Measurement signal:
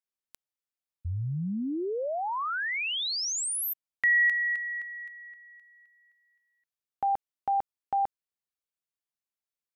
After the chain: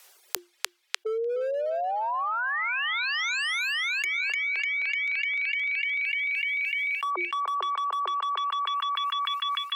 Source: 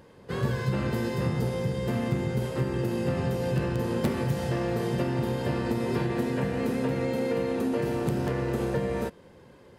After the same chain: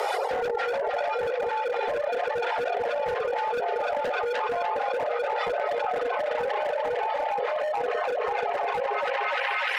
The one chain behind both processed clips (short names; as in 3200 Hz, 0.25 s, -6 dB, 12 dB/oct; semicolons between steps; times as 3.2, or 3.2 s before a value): reverb removal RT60 1.9 s; treble ducked by the level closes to 780 Hz, closed at -26.5 dBFS; reverb removal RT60 1.9 s; dynamic EQ 150 Hz, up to +7 dB, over -44 dBFS, Q 0.94; frequency shift +350 Hz; overloaded stage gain 28 dB; on a send: narrowing echo 0.299 s, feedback 74%, band-pass 2600 Hz, level -3 dB; on the sum: fast leveller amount 100%; gain +1 dB